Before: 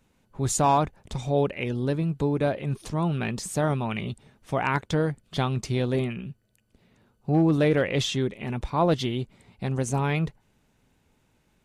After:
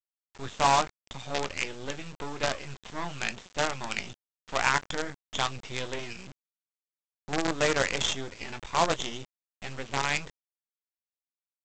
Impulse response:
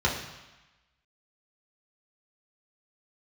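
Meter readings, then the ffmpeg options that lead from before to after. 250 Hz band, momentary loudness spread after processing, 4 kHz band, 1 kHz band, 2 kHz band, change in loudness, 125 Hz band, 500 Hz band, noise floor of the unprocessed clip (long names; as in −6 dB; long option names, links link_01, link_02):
−12.0 dB, 15 LU, +3.0 dB, −1.0 dB, +3.0 dB, −4.0 dB, −14.5 dB, −6.5 dB, −68 dBFS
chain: -filter_complex "[0:a]asplit=2[link_01][link_02];[link_02]asoftclip=type=tanh:threshold=-27dB,volume=-12dB[link_03];[link_01][link_03]amix=inputs=2:normalize=0,tiltshelf=frequency=630:gain=-8.5,asplit=2[link_04][link_05];[link_05]adelay=22,volume=-10dB[link_06];[link_04][link_06]amix=inputs=2:normalize=0,aresample=8000,aresample=44100,aresample=16000,acrusher=bits=4:dc=4:mix=0:aa=0.000001,aresample=44100,adynamicequalizer=threshold=0.0158:dfrequency=2800:dqfactor=1:tfrequency=2800:tqfactor=1:attack=5:release=100:ratio=0.375:range=3.5:mode=cutabove:tftype=bell,volume=-3.5dB"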